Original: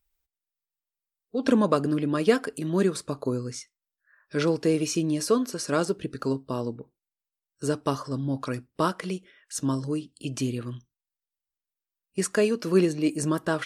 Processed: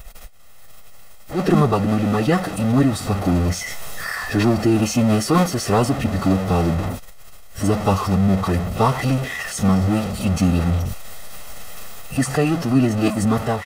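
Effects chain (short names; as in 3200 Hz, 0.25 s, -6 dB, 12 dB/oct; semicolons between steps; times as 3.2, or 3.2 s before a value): zero-crossing step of -25.5 dBFS; high shelf 2100 Hz -9 dB; comb 1.1 ms, depth 61%; AGC gain up to 12 dB; formant-preserving pitch shift -6 st; gain -3.5 dB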